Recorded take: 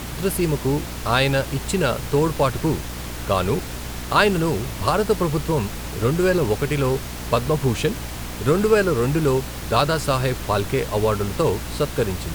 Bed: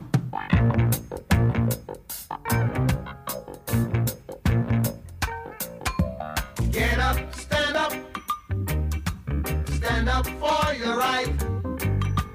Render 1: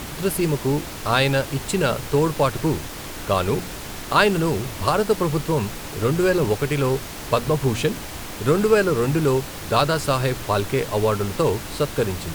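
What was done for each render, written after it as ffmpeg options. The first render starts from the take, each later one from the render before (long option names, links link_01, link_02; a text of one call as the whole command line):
ffmpeg -i in.wav -af "bandreject=frequency=60:width_type=h:width=4,bandreject=frequency=120:width_type=h:width=4,bandreject=frequency=180:width_type=h:width=4,bandreject=frequency=240:width_type=h:width=4" out.wav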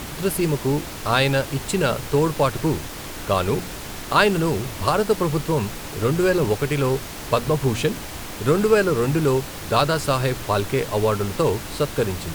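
ffmpeg -i in.wav -af anull out.wav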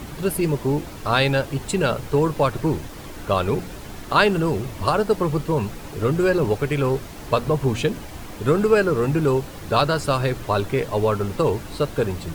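ffmpeg -i in.wav -af "afftdn=noise_reduction=8:noise_floor=-34" out.wav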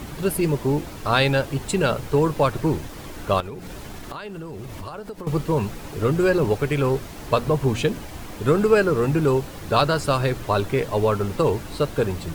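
ffmpeg -i in.wav -filter_complex "[0:a]asettb=1/sr,asplit=3[link_01][link_02][link_03];[link_01]atrim=end=3.404[link_04];[link_02]atrim=start=3.4:end=5.27,asetpts=PTS-STARTPTS,afade=type=in:duration=0.004:curve=qsin,afade=type=out:start_time=1.866:duration=0.004:curve=qsin,acompressor=threshold=-30dB:ratio=16:attack=3.2:release=140:knee=1:detection=peak[link_05];[link_03]atrim=start=5.266[link_06];[link_04][link_05]acrossfade=duration=0.004:curve1=hsin:curve2=qsin[link_07];[link_07][link_06]acrossfade=duration=0.004:curve1=qsin:curve2=hsin" out.wav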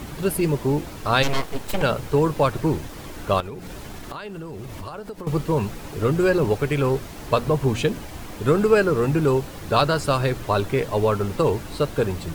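ffmpeg -i in.wav -filter_complex "[0:a]asplit=3[link_01][link_02][link_03];[link_01]afade=type=out:start_time=1.22:duration=0.02[link_04];[link_02]aeval=exprs='abs(val(0))':channel_layout=same,afade=type=in:start_time=1.22:duration=0.02,afade=type=out:start_time=1.81:duration=0.02[link_05];[link_03]afade=type=in:start_time=1.81:duration=0.02[link_06];[link_04][link_05][link_06]amix=inputs=3:normalize=0" out.wav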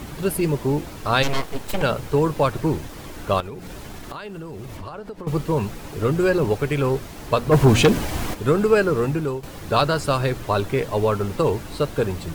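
ffmpeg -i in.wav -filter_complex "[0:a]asettb=1/sr,asplit=3[link_01][link_02][link_03];[link_01]atrim=end=4.774[link_04];[link_02]atrim=start=4.77:end=5.28,asetpts=PTS-STARTPTS,afade=type=in:duration=0.004:curve=qsin,afade=type=out:start_time=0.506:duration=0.004:curve=qsin,lowpass=frequency=4000:poles=1[link_05];[link_03]atrim=start=5.276[link_06];[link_04][link_05]acrossfade=duration=0.004:curve1=hsin:curve2=qsin[link_07];[link_07][link_06]acrossfade=duration=0.004:curve1=qsin:curve2=hsin,asplit=3[link_08][link_09][link_10];[link_08]afade=type=out:start_time=7.51:duration=0.02[link_11];[link_09]aeval=exprs='0.398*sin(PI/2*2*val(0)/0.398)':channel_layout=same,afade=type=in:start_time=7.51:duration=0.02,afade=type=out:start_time=8.33:duration=0.02[link_12];[link_10]afade=type=in:start_time=8.33:duration=0.02[link_13];[link_11][link_12][link_13]amix=inputs=3:normalize=0,asplit=2[link_14][link_15];[link_14]atrim=end=9.43,asetpts=PTS-STARTPTS,afade=type=out:start_time=9:duration=0.43:silence=0.251189[link_16];[link_15]atrim=start=9.43,asetpts=PTS-STARTPTS,afade=type=in:duration=0.004:curve=hsin:silence=0.251189[link_17];[link_16][link_17]concat=n=2:v=0:a=1" out.wav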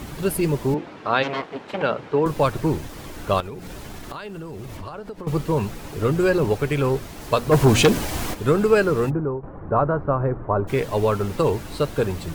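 ffmpeg -i in.wav -filter_complex "[0:a]asettb=1/sr,asplit=3[link_01][link_02][link_03];[link_01]atrim=end=0.744[link_04];[link_02]atrim=start=0.74:end=2.26,asetpts=PTS-STARTPTS,afade=type=in:duration=0.004:curve=qsin,afade=type=out:start_time=1.516:duration=0.004:curve=qsin,highpass=210,lowpass=2800[link_05];[link_03]atrim=start=2.256[link_06];[link_04][link_05]acrossfade=duration=0.004:curve1=hsin:curve2=qsin[link_07];[link_07][link_06]acrossfade=duration=0.004:curve1=qsin:curve2=hsin,asettb=1/sr,asplit=3[link_08][link_09][link_10];[link_08]atrim=end=7.214[link_11];[link_09]atrim=start=7.21:end=8.32,asetpts=PTS-STARTPTS,afade=type=in:duration=0.004:curve=qsin,afade=type=out:start_time=1.106:duration=0.004:curve=qsin,bass=frequency=250:gain=-2,treble=frequency=4000:gain=3[link_12];[link_10]atrim=start=8.316[link_13];[link_11][link_12]acrossfade=duration=0.004:curve1=hsin:curve2=qsin[link_14];[link_14][link_13]acrossfade=duration=0.004:curve1=qsin:curve2=hsin,asplit=3[link_15][link_16][link_17];[link_15]afade=type=out:start_time=9.09:duration=0.02[link_18];[link_16]lowpass=frequency=1300:width=0.5412,lowpass=frequency=1300:width=1.3066,afade=type=in:start_time=9.09:duration=0.02,afade=type=out:start_time=10.67:duration=0.02[link_19];[link_17]afade=type=in:start_time=10.67:duration=0.02[link_20];[link_18][link_19][link_20]amix=inputs=3:normalize=0" out.wav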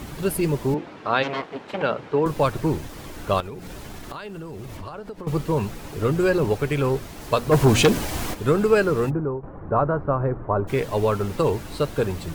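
ffmpeg -i in.wav -af "volume=-1dB" out.wav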